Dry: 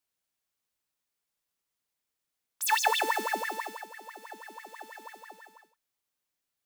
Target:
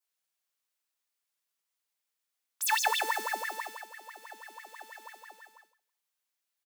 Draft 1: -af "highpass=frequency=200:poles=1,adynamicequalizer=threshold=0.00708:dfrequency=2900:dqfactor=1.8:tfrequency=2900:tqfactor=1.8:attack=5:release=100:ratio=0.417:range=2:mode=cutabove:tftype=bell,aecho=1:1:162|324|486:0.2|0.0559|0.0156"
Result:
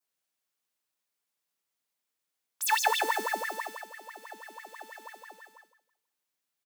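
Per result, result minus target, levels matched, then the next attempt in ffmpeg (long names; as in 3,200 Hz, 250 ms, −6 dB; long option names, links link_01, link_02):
echo-to-direct +8.5 dB; 250 Hz band +5.5 dB
-af "highpass=frequency=200:poles=1,adynamicequalizer=threshold=0.00708:dfrequency=2900:dqfactor=1.8:tfrequency=2900:tqfactor=1.8:attack=5:release=100:ratio=0.417:range=2:mode=cutabove:tftype=bell,aecho=1:1:162|324:0.075|0.021"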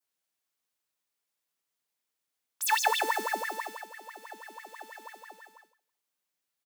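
250 Hz band +6.0 dB
-af "highpass=frequency=800:poles=1,adynamicequalizer=threshold=0.00708:dfrequency=2900:dqfactor=1.8:tfrequency=2900:tqfactor=1.8:attack=5:release=100:ratio=0.417:range=2:mode=cutabove:tftype=bell,aecho=1:1:162|324:0.075|0.021"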